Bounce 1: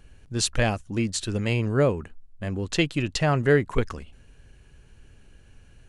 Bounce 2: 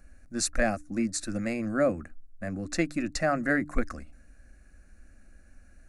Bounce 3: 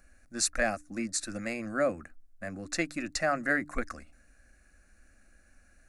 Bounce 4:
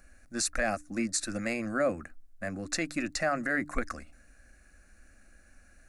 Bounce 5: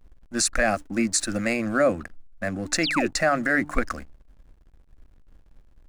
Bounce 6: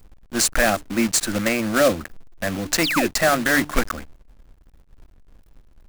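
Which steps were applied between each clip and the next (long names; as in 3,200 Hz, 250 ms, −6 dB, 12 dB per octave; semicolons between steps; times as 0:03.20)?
phaser with its sweep stopped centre 630 Hz, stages 8; hum removal 148.5 Hz, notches 2
low-shelf EQ 470 Hz −9.5 dB; level +1 dB
brickwall limiter −21.5 dBFS, peak gain reduction 7.5 dB; level +3 dB
slack as between gear wheels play −47.5 dBFS; sound drawn into the spectrogram fall, 0:02.83–0:03.08, 300–5,800 Hz −34 dBFS; level +7.5 dB
one scale factor per block 3 bits; level +3 dB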